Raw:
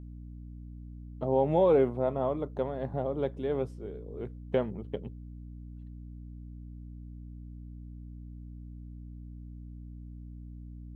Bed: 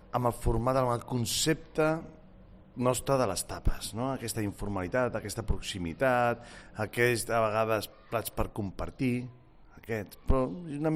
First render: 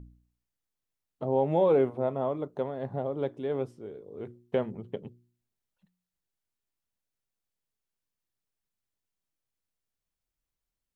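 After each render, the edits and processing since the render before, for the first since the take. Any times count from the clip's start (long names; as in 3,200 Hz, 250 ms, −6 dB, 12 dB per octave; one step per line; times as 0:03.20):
hum removal 60 Hz, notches 6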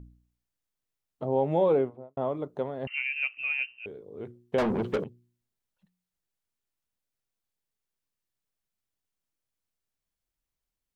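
0:01.65–0:02.17: fade out and dull
0:02.87–0:03.86: voice inversion scrambler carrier 2,900 Hz
0:04.58–0:05.04: mid-hump overdrive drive 33 dB, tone 2,700 Hz, clips at −18 dBFS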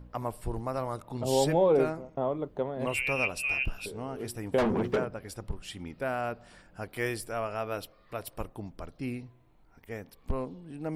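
mix in bed −6 dB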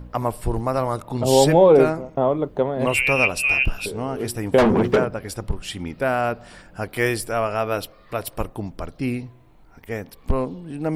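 level +10.5 dB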